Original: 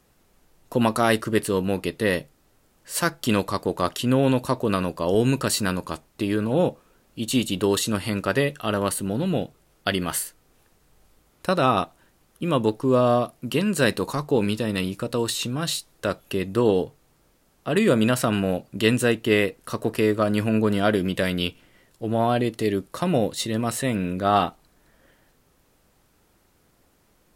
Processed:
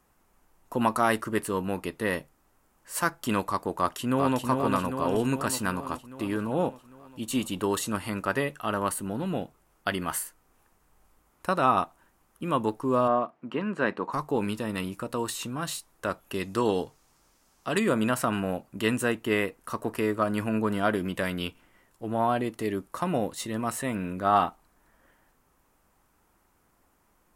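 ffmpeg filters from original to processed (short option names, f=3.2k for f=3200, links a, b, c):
-filter_complex "[0:a]asplit=2[a][b];[b]afade=t=in:st=3.75:d=0.01,afade=t=out:st=4.46:d=0.01,aecho=0:1:400|800|1200|1600|2000|2400|2800|3200|3600|4000:0.630957|0.410122|0.266579|0.173277|0.11263|0.0732094|0.0475861|0.030931|0.0201051|0.0130683[c];[a][c]amix=inputs=2:normalize=0,asplit=3[d][e][f];[d]afade=t=out:st=13.07:d=0.02[g];[e]highpass=180,lowpass=2.3k,afade=t=in:st=13.07:d=0.02,afade=t=out:st=14.12:d=0.02[h];[f]afade=t=in:st=14.12:d=0.02[i];[g][h][i]amix=inputs=3:normalize=0,asettb=1/sr,asplit=3[j][k][l];[j]atrim=end=16.344[m];[k]atrim=start=16.34:end=17.8,asetpts=PTS-STARTPTS,afade=t=in:d=0.004:c=qsin,afade=t=out:st=1.456:d=0.004:c=qsin,equalizer=f=5.3k:t=o:w=1.6:g=12[n];[l]atrim=start=17.796[o];[m][n]acrossfade=d=0.004:c1=hsin:c2=qsin[p];[p][o]acrossfade=d=0.004:c1=qsin:c2=hsin,equalizer=f=125:t=o:w=1:g=-5,equalizer=f=500:t=o:w=1:g=-4,equalizer=f=1k:t=o:w=1:g=6,equalizer=f=4k:t=o:w=1:g=-7,volume=-4dB"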